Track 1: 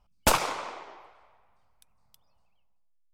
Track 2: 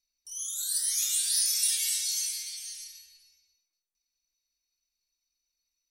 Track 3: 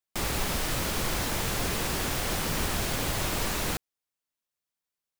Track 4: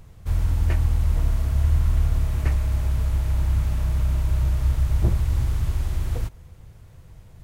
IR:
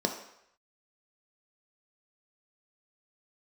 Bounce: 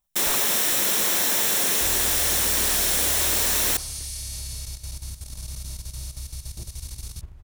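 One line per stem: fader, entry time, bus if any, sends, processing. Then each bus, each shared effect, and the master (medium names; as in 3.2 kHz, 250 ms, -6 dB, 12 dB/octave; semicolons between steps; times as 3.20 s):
-9.0 dB, 0.00 s, no send, none
-7.0 dB, 1.30 s, no send, spectral levelling over time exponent 0.2
+1.5 dB, 0.00 s, send -12.5 dB, tilt EQ +3.5 dB/octave
-9.5 dB, 1.55 s, no send, treble shelf 3.7 kHz -8 dB; compression 6:1, threshold -21 dBFS, peak gain reduction 7.5 dB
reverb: on, RT60 0.75 s, pre-delay 3 ms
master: level held to a coarse grid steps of 11 dB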